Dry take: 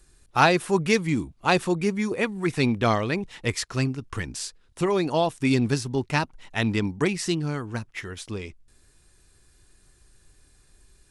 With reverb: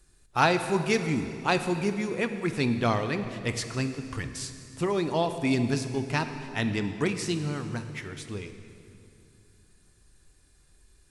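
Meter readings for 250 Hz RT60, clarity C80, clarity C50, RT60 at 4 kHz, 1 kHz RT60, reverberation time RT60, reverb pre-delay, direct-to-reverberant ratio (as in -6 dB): 3.2 s, 10.0 dB, 9.0 dB, 2.3 s, 2.4 s, 2.6 s, 8 ms, 8.0 dB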